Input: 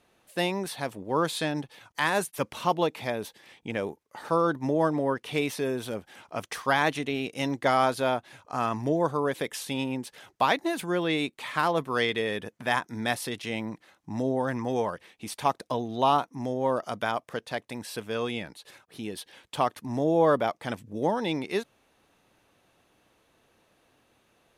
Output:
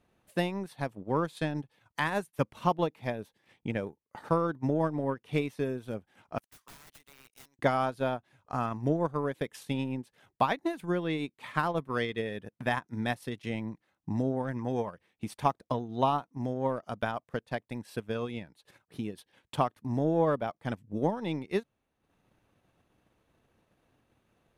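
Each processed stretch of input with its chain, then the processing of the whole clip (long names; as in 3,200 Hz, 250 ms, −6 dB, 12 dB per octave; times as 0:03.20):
0:06.38–0:07.59: first difference + wrap-around overflow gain 37.5 dB + power curve on the samples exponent 1.4
whole clip: parametric band 3,600 Hz −2.5 dB 1.7 octaves; transient designer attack +6 dB, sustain −9 dB; bass and treble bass +8 dB, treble −4 dB; level −6.5 dB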